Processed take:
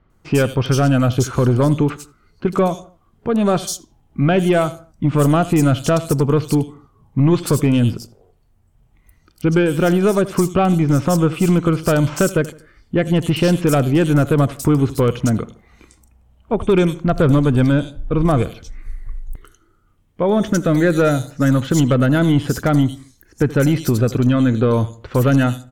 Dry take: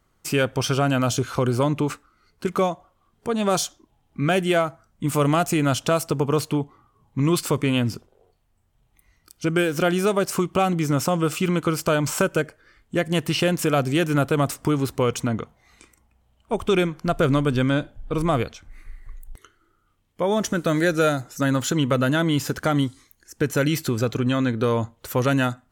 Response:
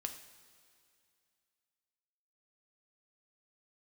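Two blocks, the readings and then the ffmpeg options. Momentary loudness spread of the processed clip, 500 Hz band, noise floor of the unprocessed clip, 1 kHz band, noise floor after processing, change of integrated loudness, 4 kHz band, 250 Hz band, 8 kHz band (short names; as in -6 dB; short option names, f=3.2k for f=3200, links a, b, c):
8 LU, +4.5 dB, -66 dBFS, +2.5 dB, -57 dBFS, +6.0 dB, -0.5 dB, +7.0 dB, +1.5 dB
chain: -filter_complex "[0:a]lowshelf=f=420:g=7.5,acrossover=split=3700[a][b];[b]adelay=100[c];[a][c]amix=inputs=2:normalize=0,aeval=exprs='0.891*(cos(1*acos(clip(val(0)/0.891,-1,1)))-cos(1*PI/2))+0.0355*(cos(4*acos(clip(val(0)/0.891,-1,1)))-cos(4*PI/2))+0.112*(cos(5*acos(clip(val(0)/0.891,-1,1)))-cos(5*PI/2))+0.0178*(cos(7*acos(clip(val(0)/0.891,-1,1)))-cos(7*PI/2))':c=same,asplit=2[d][e];[e]adelay=80,lowpass=f=1.9k:p=1,volume=-17.5dB,asplit=2[f][g];[g]adelay=80,lowpass=f=1.9k:p=1,volume=0.39,asplit=2[h][i];[i]adelay=80,lowpass=f=1.9k:p=1,volume=0.39[j];[f][h][j]amix=inputs=3:normalize=0[k];[d][k]amix=inputs=2:normalize=0,volume=-1dB"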